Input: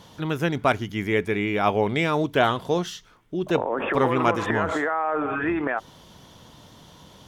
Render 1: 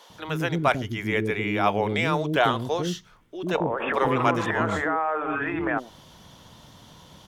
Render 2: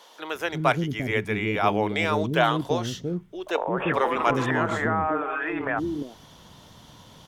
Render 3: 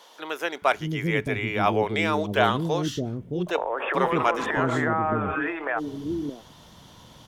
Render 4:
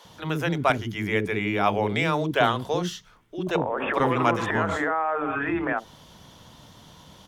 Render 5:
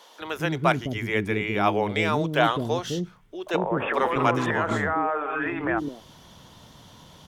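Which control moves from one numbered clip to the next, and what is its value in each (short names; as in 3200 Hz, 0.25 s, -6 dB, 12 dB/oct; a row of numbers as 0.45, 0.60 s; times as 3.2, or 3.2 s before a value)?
bands offset in time, time: 100, 350, 620, 50, 210 ms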